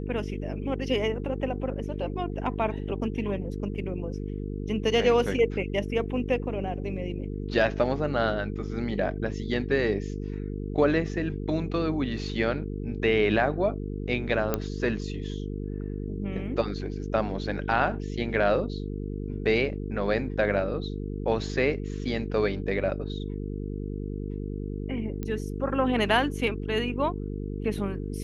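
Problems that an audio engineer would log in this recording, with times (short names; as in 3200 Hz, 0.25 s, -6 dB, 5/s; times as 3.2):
buzz 50 Hz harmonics 9 -33 dBFS
14.54 pop -11 dBFS
25.23 pop -20 dBFS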